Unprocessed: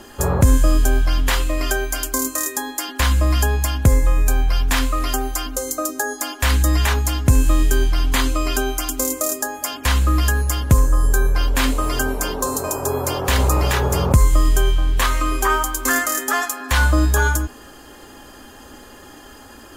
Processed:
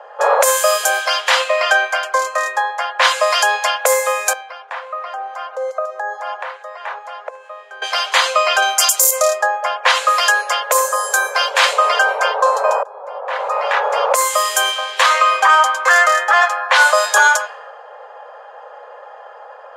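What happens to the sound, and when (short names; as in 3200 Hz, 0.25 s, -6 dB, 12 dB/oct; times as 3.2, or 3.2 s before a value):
4.33–7.82 compressor 16:1, threshold -25 dBFS
8.62–9.11 tone controls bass -4 dB, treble +12 dB
12.83–14.55 fade in, from -23.5 dB
whole clip: low-pass opened by the level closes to 830 Hz, open at -9.5 dBFS; steep high-pass 480 Hz 96 dB/oct; maximiser +13.5 dB; gain -1 dB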